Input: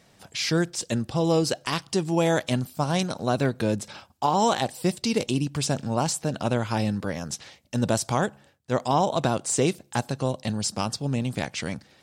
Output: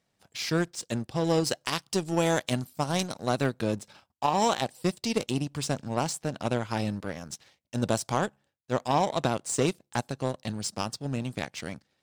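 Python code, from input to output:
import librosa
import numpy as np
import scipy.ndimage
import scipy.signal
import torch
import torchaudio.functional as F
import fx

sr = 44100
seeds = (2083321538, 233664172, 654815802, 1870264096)

y = fx.high_shelf(x, sr, hz=5400.0, db=5.5, at=(1.44, 3.55))
y = fx.power_curve(y, sr, exponent=1.4)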